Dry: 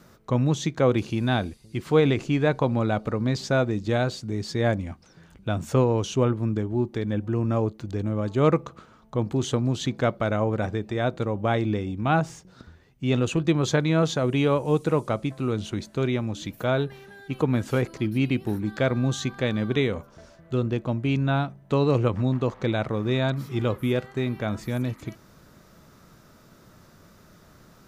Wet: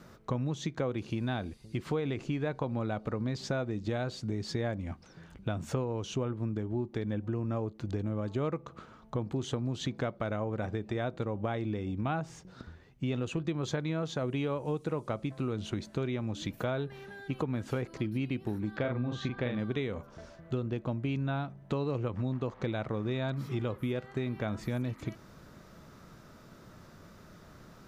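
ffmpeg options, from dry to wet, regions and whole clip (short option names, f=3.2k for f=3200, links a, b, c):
-filter_complex "[0:a]asettb=1/sr,asplit=3[a][b][c];[a]atrim=end=18.764[d];[b]atrim=start=18.76:end=19.59,asetpts=PTS-STARTPTS,afade=t=in:d=0.004:c=qsin,afade=t=out:st=0.826:d=0.004:c=qsin,lowpass=3.4k,asplit=2[e][f];[f]adelay=41,volume=-4dB[g];[e][g]amix=inputs=2:normalize=0,atrim=end_sample=36603[h];[c]atrim=start=19.586[i];[d][h]acrossfade=d=0.004:c1=hsin:c2=qsin[j];[j][i]acrossfade=d=0.004:c1=qsin:c2=hsin,highshelf=f=6.6k:g=-8,acompressor=threshold=-30dB:ratio=6"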